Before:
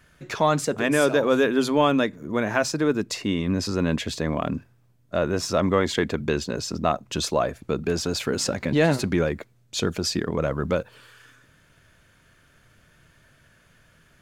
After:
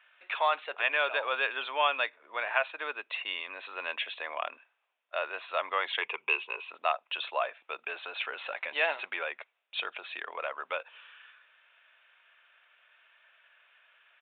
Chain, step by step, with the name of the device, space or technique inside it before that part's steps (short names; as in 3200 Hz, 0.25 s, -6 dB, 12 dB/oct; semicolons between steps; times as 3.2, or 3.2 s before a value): 6.01–6.7 ripple EQ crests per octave 0.75, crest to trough 13 dB; musical greeting card (downsampling 8000 Hz; HPF 710 Hz 24 dB/oct; bell 2600 Hz +8 dB 0.4 oct); gain -3.5 dB